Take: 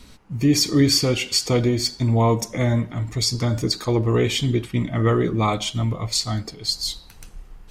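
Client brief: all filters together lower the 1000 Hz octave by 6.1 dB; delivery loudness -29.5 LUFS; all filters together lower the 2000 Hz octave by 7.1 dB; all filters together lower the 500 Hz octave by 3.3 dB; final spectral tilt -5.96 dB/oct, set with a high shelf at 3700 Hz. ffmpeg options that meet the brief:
-af "equalizer=f=500:t=o:g=-3,equalizer=f=1k:t=o:g=-5,equalizer=f=2k:t=o:g=-5,highshelf=f=3.7k:g=-8,volume=-6dB"

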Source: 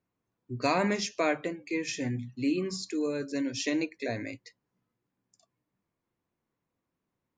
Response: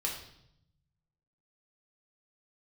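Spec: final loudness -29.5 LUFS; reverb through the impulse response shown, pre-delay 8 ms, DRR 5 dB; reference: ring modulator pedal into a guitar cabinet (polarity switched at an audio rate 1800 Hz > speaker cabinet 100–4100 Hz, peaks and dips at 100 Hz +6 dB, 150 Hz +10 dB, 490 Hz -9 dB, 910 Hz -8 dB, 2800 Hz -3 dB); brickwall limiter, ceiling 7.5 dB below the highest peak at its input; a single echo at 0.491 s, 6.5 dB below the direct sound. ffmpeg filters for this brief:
-filter_complex "[0:a]alimiter=limit=-23dB:level=0:latency=1,aecho=1:1:491:0.473,asplit=2[a][b];[1:a]atrim=start_sample=2205,adelay=8[c];[b][c]afir=irnorm=-1:irlink=0,volume=-8.5dB[d];[a][d]amix=inputs=2:normalize=0,aeval=exprs='val(0)*sgn(sin(2*PI*1800*n/s))':c=same,highpass=100,equalizer=f=100:t=q:w=4:g=6,equalizer=f=150:t=q:w=4:g=10,equalizer=f=490:t=q:w=4:g=-9,equalizer=f=910:t=q:w=4:g=-8,equalizer=f=2.8k:t=q:w=4:g=-3,lowpass=f=4.1k:w=0.5412,lowpass=f=4.1k:w=1.3066,volume=2.5dB"

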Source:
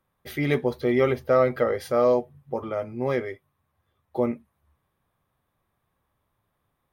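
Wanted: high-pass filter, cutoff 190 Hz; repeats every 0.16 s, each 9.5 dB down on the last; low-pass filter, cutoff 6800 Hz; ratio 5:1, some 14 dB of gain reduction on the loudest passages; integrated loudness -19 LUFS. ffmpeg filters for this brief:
-af "highpass=190,lowpass=6.8k,acompressor=threshold=-32dB:ratio=5,aecho=1:1:160|320|480|640:0.335|0.111|0.0365|0.012,volume=17.5dB"

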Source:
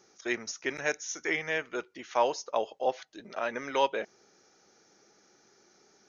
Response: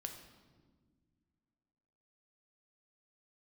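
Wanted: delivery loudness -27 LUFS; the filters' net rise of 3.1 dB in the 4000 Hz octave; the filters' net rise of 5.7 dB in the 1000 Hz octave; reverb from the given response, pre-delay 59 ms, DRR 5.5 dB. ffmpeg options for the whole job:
-filter_complex "[0:a]equalizer=f=1k:t=o:g=6.5,equalizer=f=4k:t=o:g=4,asplit=2[a][b];[1:a]atrim=start_sample=2205,adelay=59[c];[b][c]afir=irnorm=-1:irlink=0,volume=-2.5dB[d];[a][d]amix=inputs=2:normalize=0,volume=1dB"

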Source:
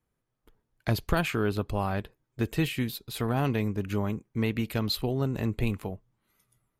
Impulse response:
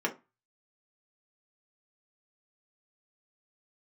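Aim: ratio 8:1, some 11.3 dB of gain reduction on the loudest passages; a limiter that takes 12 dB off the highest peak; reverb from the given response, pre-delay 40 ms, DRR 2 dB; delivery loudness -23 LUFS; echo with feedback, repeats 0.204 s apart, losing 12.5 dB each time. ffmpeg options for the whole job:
-filter_complex "[0:a]acompressor=threshold=-33dB:ratio=8,alimiter=level_in=9dB:limit=-24dB:level=0:latency=1,volume=-9dB,aecho=1:1:204|408|612:0.237|0.0569|0.0137,asplit=2[a][b];[1:a]atrim=start_sample=2205,adelay=40[c];[b][c]afir=irnorm=-1:irlink=0,volume=-10dB[d];[a][d]amix=inputs=2:normalize=0,volume=19dB"

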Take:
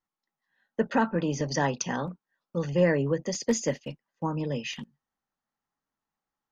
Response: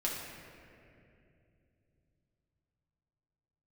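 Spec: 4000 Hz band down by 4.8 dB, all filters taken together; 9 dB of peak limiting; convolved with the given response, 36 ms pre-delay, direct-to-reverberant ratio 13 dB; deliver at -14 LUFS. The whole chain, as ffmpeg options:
-filter_complex "[0:a]equalizer=f=4k:t=o:g=-7,alimiter=limit=-21dB:level=0:latency=1,asplit=2[a][b];[1:a]atrim=start_sample=2205,adelay=36[c];[b][c]afir=irnorm=-1:irlink=0,volume=-17.5dB[d];[a][d]amix=inputs=2:normalize=0,volume=18.5dB"

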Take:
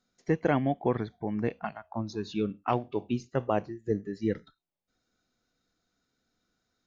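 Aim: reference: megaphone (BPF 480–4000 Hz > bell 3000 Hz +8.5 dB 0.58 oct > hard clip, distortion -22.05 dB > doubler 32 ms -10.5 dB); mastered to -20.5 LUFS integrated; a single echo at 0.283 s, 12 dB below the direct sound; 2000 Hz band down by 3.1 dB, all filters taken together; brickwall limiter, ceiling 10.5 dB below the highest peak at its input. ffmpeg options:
-filter_complex "[0:a]equalizer=f=2k:t=o:g=-6.5,alimiter=limit=-23.5dB:level=0:latency=1,highpass=480,lowpass=4k,equalizer=f=3k:t=o:w=0.58:g=8.5,aecho=1:1:283:0.251,asoftclip=type=hard:threshold=-28dB,asplit=2[a][b];[b]adelay=32,volume=-10.5dB[c];[a][c]amix=inputs=2:normalize=0,volume=21.5dB"

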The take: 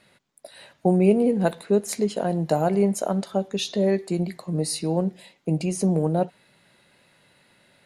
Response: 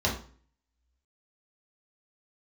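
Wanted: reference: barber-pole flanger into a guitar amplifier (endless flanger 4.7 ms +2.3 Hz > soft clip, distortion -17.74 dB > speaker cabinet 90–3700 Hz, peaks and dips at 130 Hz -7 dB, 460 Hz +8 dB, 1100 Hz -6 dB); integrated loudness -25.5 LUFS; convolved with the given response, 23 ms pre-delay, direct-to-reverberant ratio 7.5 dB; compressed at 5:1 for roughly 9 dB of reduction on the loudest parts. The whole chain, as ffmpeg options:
-filter_complex "[0:a]acompressor=threshold=-24dB:ratio=5,asplit=2[a][b];[1:a]atrim=start_sample=2205,adelay=23[c];[b][c]afir=irnorm=-1:irlink=0,volume=-18.5dB[d];[a][d]amix=inputs=2:normalize=0,asplit=2[e][f];[f]adelay=4.7,afreqshift=2.3[g];[e][g]amix=inputs=2:normalize=1,asoftclip=threshold=-22dB,highpass=90,equalizer=f=130:t=q:w=4:g=-7,equalizer=f=460:t=q:w=4:g=8,equalizer=f=1.1k:t=q:w=4:g=-6,lowpass=f=3.7k:w=0.5412,lowpass=f=3.7k:w=1.3066,volume=6dB"

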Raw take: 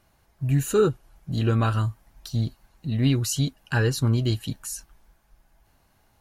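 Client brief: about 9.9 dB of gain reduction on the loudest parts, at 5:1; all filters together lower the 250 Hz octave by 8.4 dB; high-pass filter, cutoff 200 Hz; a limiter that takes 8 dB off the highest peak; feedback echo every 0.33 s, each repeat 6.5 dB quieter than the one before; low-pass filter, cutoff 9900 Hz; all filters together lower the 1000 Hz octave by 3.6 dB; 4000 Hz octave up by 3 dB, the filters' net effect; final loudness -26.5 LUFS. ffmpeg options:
-af "highpass=200,lowpass=9.9k,equalizer=f=250:t=o:g=-8,equalizer=f=1k:t=o:g=-5,equalizer=f=4k:t=o:g=4,acompressor=threshold=-29dB:ratio=5,alimiter=level_in=1dB:limit=-24dB:level=0:latency=1,volume=-1dB,aecho=1:1:330|660|990|1320|1650|1980:0.473|0.222|0.105|0.0491|0.0231|0.0109,volume=9.5dB"

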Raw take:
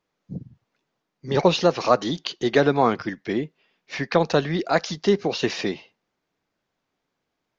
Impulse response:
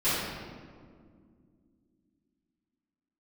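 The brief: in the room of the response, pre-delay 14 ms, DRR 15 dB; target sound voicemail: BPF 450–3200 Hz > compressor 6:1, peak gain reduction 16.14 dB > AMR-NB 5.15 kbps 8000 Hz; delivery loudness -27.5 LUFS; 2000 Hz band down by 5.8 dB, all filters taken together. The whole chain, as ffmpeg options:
-filter_complex "[0:a]equalizer=f=2k:t=o:g=-7,asplit=2[a][b];[1:a]atrim=start_sample=2205,adelay=14[c];[b][c]afir=irnorm=-1:irlink=0,volume=-28dB[d];[a][d]amix=inputs=2:normalize=0,highpass=450,lowpass=3.2k,acompressor=threshold=-31dB:ratio=6,volume=11dB" -ar 8000 -c:a libopencore_amrnb -b:a 5150

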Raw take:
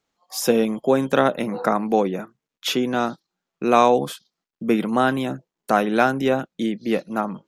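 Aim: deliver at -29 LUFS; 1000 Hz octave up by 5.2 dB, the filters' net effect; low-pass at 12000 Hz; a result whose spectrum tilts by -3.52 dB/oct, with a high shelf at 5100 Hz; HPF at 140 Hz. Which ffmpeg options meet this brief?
-af "highpass=140,lowpass=12k,equalizer=f=1k:t=o:g=7.5,highshelf=f=5.1k:g=-5.5,volume=-10dB"

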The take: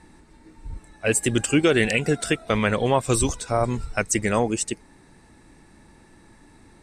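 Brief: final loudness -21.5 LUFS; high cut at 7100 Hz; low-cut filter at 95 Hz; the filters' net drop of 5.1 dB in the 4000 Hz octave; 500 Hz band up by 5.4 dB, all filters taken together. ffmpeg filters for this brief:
-af "highpass=95,lowpass=7.1k,equalizer=f=500:t=o:g=6.5,equalizer=f=4k:t=o:g=-7.5,volume=-1dB"

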